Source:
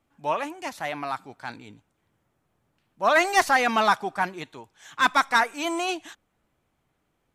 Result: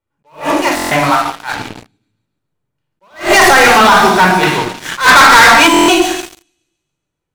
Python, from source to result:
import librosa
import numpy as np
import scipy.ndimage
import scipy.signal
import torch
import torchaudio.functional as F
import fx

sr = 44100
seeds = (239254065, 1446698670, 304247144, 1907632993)

p1 = fx.highpass(x, sr, hz=590.0, slope=24, at=(1.04, 1.53))
p2 = p1 + fx.echo_wet_highpass(p1, sr, ms=140, feedback_pct=57, hz=4900.0, wet_db=-3.5, dry=0)
p3 = fx.room_shoebox(p2, sr, seeds[0], volume_m3=2800.0, walls='furnished', distance_m=4.7)
p4 = fx.over_compress(p3, sr, threshold_db=-18.0, ratio=-0.5)
p5 = p3 + F.gain(torch.from_numpy(p4), -1.5).numpy()
p6 = fx.peak_eq(p5, sr, hz=1800.0, db=9.0, octaves=2.9, at=(4.43, 5.67))
p7 = fx.leveller(p6, sr, passes=5)
p8 = fx.buffer_glitch(p7, sr, at_s=(0.75, 5.72), block=1024, repeats=6)
p9 = fx.attack_slew(p8, sr, db_per_s=190.0)
y = F.gain(torch.from_numpy(p9), -7.5).numpy()